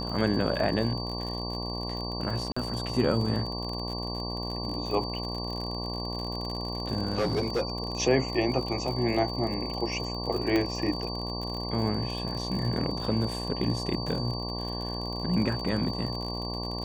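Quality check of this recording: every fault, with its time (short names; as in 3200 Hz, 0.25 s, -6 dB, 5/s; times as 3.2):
buzz 60 Hz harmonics 19 -35 dBFS
crackle 50/s -33 dBFS
tone 4600 Hz -36 dBFS
2.52–2.56 gap 45 ms
7.12–7.77 clipped -22.5 dBFS
10.56 pop -14 dBFS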